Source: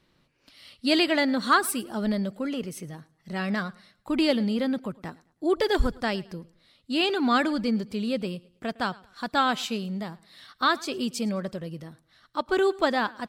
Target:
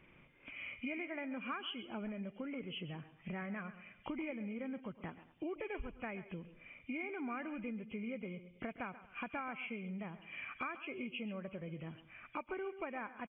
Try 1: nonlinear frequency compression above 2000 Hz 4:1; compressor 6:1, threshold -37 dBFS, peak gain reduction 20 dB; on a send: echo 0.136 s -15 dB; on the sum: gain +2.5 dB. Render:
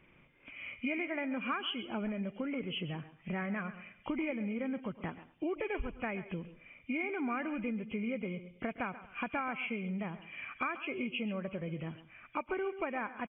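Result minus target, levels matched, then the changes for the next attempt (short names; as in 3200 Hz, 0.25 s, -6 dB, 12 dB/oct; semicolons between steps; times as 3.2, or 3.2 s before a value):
compressor: peak gain reduction -6 dB
change: compressor 6:1, threshold -44.5 dBFS, peak gain reduction 26.5 dB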